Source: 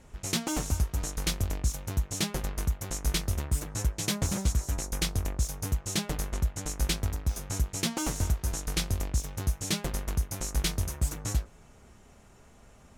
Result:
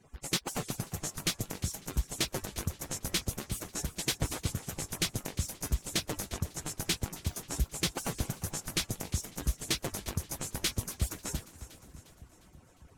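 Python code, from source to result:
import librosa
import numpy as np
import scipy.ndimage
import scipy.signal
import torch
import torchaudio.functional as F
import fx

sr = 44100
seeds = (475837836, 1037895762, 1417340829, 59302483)

y = fx.hpss_only(x, sr, part='percussive')
y = fx.echo_split(y, sr, split_hz=330.0, low_ms=600, high_ms=354, feedback_pct=52, wet_db=-15.0)
y = fx.echo_warbled(y, sr, ms=269, feedback_pct=53, rate_hz=2.8, cents=207, wet_db=-21.0)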